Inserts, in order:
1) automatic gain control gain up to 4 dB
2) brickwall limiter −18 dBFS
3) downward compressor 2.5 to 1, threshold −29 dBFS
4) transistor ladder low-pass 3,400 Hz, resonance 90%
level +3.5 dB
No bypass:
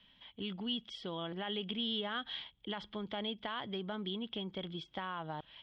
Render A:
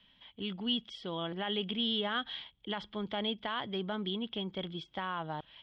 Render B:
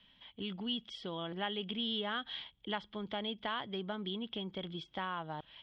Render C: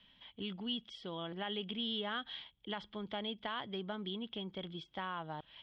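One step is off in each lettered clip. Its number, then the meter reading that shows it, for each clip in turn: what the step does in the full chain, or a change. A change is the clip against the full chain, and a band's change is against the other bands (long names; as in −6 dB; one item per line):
3, change in momentary loudness spread +2 LU
2, change in crest factor +3.5 dB
1, change in integrated loudness −1.5 LU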